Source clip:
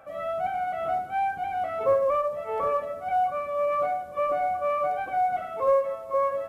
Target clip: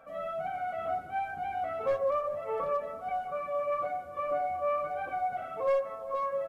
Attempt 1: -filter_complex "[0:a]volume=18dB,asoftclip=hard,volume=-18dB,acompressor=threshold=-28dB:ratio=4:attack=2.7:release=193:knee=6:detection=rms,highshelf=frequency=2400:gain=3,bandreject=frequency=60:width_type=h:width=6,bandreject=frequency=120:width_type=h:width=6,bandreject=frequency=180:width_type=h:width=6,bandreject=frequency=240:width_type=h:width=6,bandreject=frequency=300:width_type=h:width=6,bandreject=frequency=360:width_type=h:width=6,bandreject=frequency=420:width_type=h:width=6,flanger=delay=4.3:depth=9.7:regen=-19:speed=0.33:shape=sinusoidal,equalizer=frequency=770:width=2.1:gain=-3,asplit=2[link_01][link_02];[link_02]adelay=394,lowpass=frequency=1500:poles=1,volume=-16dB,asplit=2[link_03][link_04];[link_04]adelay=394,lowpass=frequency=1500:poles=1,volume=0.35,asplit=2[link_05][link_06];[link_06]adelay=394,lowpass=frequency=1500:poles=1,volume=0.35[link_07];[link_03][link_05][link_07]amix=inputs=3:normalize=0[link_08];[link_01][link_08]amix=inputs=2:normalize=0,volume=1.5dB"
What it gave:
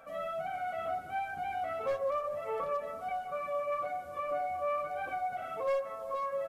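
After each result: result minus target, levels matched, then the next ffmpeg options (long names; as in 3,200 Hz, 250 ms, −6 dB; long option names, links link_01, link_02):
4,000 Hz band +5.0 dB; downward compressor: peak gain reduction +4.5 dB
-filter_complex "[0:a]volume=18dB,asoftclip=hard,volume=-18dB,acompressor=threshold=-28dB:ratio=4:attack=2.7:release=193:knee=6:detection=rms,highshelf=frequency=2400:gain=-5,bandreject=frequency=60:width_type=h:width=6,bandreject=frequency=120:width_type=h:width=6,bandreject=frequency=180:width_type=h:width=6,bandreject=frequency=240:width_type=h:width=6,bandreject=frequency=300:width_type=h:width=6,bandreject=frequency=360:width_type=h:width=6,bandreject=frequency=420:width_type=h:width=6,flanger=delay=4.3:depth=9.7:regen=-19:speed=0.33:shape=sinusoidal,equalizer=frequency=770:width=2.1:gain=-3,asplit=2[link_01][link_02];[link_02]adelay=394,lowpass=frequency=1500:poles=1,volume=-16dB,asplit=2[link_03][link_04];[link_04]adelay=394,lowpass=frequency=1500:poles=1,volume=0.35,asplit=2[link_05][link_06];[link_06]adelay=394,lowpass=frequency=1500:poles=1,volume=0.35[link_07];[link_03][link_05][link_07]amix=inputs=3:normalize=0[link_08];[link_01][link_08]amix=inputs=2:normalize=0,volume=1.5dB"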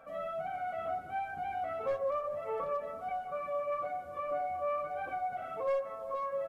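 downward compressor: peak gain reduction +4.5 dB
-filter_complex "[0:a]volume=18dB,asoftclip=hard,volume=-18dB,acompressor=threshold=-21.5dB:ratio=4:attack=2.7:release=193:knee=6:detection=rms,highshelf=frequency=2400:gain=-5,bandreject=frequency=60:width_type=h:width=6,bandreject=frequency=120:width_type=h:width=6,bandreject=frequency=180:width_type=h:width=6,bandreject=frequency=240:width_type=h:width=6,bandreject=frequency=300:width_type=h:width=6,bandreject=frequency=360:width_type=h:width=6,bandreject=frequency=420:width_type=h:width=6,flanger=delay=4.3:depth=9.7:regen=-19:speed=0.33:shape=sinusoidal,equalizer=frequency=770:width=2.1:gain=-3,asplit=2[link_01][link_02];[link_02]adelay=394,lowpass=frequency=1500:poles=1,volume=-16dB,asplit=2[link_03][link_04];[link_04]adelay=394,lowpass=frequency=1500:poles=1,volume=0.35,asplit=2[link_05][link_06];[link_06]adelay=394,lowpass=frequency=1500:poles=1,volume=0.35[link_07];[link_03][link_05][link_07]amix=inputs=3:normalize=0[link_08];[link_01][link_08]amix=inputs=2:normalize=0,volume=1.5dB"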